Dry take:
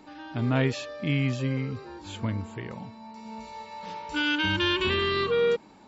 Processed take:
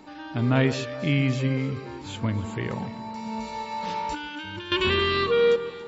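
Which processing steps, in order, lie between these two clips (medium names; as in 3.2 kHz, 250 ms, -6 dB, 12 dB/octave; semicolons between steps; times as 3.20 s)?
2.44–4.72 s: compressor with a negative ratio -35 dBFS, ratio -1; echo whose repeats swap between lows and highs 140 ms, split 1.7 kHz, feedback 68%, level -12.5 dB; trim +3 dB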